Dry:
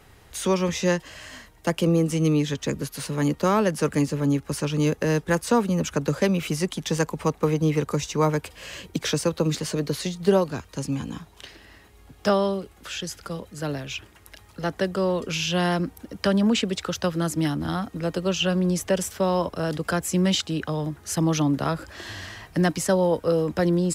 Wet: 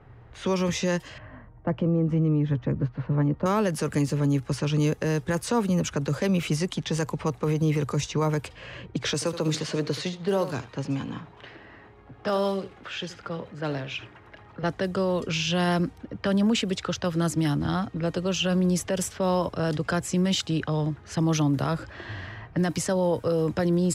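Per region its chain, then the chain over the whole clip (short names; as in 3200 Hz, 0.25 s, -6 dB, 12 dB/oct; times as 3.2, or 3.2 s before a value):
1.18–3.46 LPF 1300 Hz + low shelf 170 Hz +4 dB + notch 410 Hz, Q 7.4
9.14–14.63 G.711 law mismatch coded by mu + HPF 250 Hz 6 dB/oct + echo 77 ms -15 dB
whole clip: low-pass opened by the level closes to 1400 Hz, open at -19.5 dBFS; bell 120 Hz +11.5 dB 0.34 oct; limiter -16 dBFS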